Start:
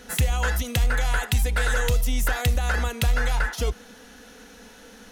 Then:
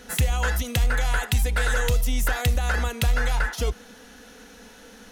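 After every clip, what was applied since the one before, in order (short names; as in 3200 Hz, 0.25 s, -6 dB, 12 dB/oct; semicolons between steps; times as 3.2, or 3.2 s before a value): nothing audible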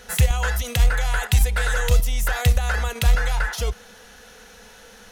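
bell 270 Hz -14.5 dB 0.55 oct; in parallel at +1 dB: level quantiser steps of 20 dB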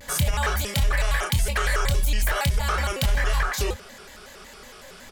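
on a send: early reflections 28 ms -4 dB, 39 ms -9 dB; on the sum: limiter -14 dBFS, peak gain reduction 10.5 dB; shaped vibrato square 5.4 Hz, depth 250 cents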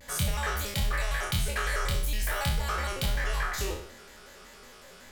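spectral trails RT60 0.60 s; gain -8 dB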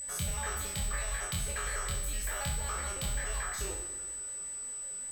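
plate-style reverb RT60 1.9 s, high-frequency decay 0.9×, DRR 8.5 dB; companded quantiser 6-bit; whine 8000 Hz -30 dBFS; gain -7.5 dB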